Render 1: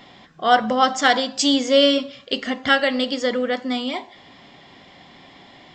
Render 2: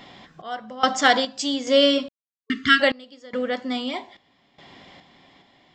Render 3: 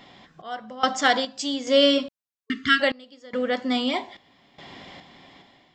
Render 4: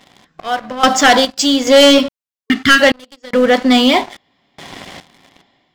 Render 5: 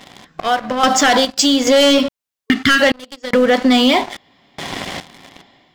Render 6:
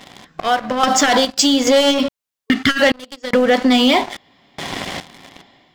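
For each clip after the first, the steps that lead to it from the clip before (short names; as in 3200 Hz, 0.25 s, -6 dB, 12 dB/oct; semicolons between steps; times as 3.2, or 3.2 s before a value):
random-step tremolo 2.4 Hz, depth 100%; spectral repair 2.41–2.78, 440–1100 Hz before; gain +1.5 dB
AGC gain up to 8 dB; gain -4 dB
sample leveller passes 3; gain +3.5 dB
limiter -6 dBFS, peak gain reduction 4.5 dB; compressor 2:1, threshold -23 dBFS, peak gain reduction 8 dB; gain +7 dB
core saturation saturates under 260 Hz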